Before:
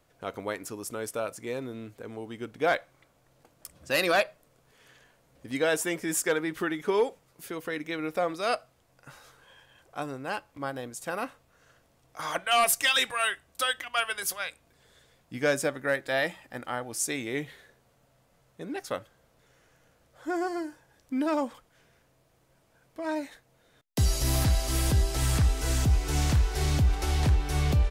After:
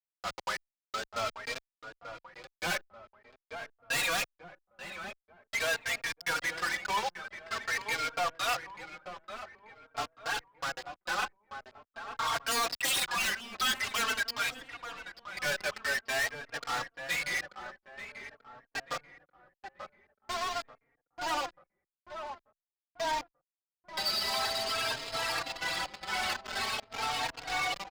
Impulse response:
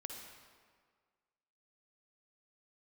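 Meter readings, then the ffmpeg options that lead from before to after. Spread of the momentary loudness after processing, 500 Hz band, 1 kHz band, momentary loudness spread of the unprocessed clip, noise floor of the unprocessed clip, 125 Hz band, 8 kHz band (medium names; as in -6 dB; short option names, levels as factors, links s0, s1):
17 LU, -9.5 dB, -1.0 dB, 13 LU, -66 dBFS, -23.5 dB, -4.5 dB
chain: -filter_complex "[0:a]afftfilt=real='re*gte(hypot(re,im),0.0282)':imag='im*gte(hypot(re,im),0.0282)':win_size=1024:overlap=0.75,highpass=f=790:w=0.5412,highpass=f=790:w=1.3066,adynamicequalizer=threshold=0.00562:dfrequency=2800:dqfactor=1.6:tfrequency=2800:tqfactor=1.6:attack=5:release=100:ratio=0.375:range=2:mode=boostabove:tftype=bell,aresample=11025,acrusher=bits=6:mix=0:aa=0.000001,aresample=44100,aeval=exprs='0.299*sin(PI/2*3.98*val(0)/0.299)':c=same,acrusher=bits=3:mode=log:mix=0:aa=0.000001,asoftclip=type=tanh:threshold=0.0501,asplit=2[s0][s1];[s1]adelay=887,lowpass=f=1800:p=1,volume=0.376,asplit=2[s2][s3];[s3]adelay=887,lowpass=f=1800:p=1,volume=0.44,asplit=2[s4][s5];[s5]adelay=887,lowpass=f=1800:p=1,volume=0.44,asplit=2[s6][s7];[s7]adelay=887,lowpass=f=1800:p=1,volume=0.44,asplit=2[s8][s9];[s9]adelay=887,lowpass=f=1800:p=1,volume=0.44[s10];[s0][s2][s4][s6][s8][s10]amix=inputs=6:normalize=0,asplit=2[s11][s12];[s12]adelay=3.7,afreqshift=0.47[s13];[s11][s13]amix=inputs=2:normalize=1"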